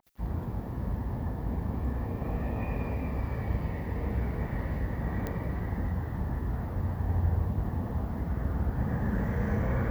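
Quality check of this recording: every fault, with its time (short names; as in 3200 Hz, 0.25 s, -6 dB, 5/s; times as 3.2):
5.27 pop -20 dBFS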